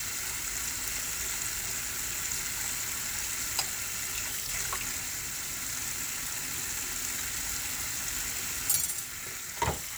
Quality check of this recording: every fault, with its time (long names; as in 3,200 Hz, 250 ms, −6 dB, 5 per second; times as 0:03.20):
0:04.98–0:05.63: clipping −31 dBFS